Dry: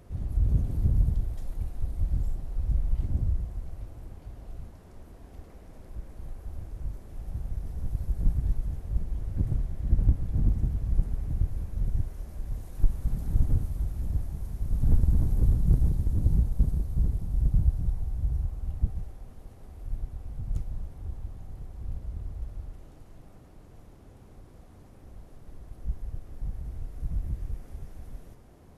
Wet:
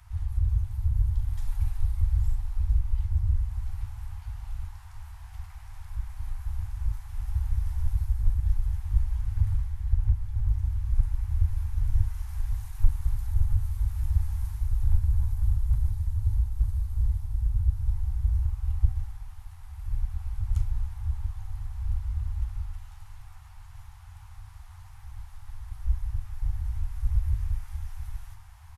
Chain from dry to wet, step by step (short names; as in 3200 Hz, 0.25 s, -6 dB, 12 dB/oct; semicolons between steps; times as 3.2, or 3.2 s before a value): Chebyshev band-stop 110–840 Hz, order 4; vocal rider within 4 dB 0.5 s; early reflections 13 ms -10.5 dB, 39 ms -11.5 dB, 71 ms -18 dB; gain +2.5 dB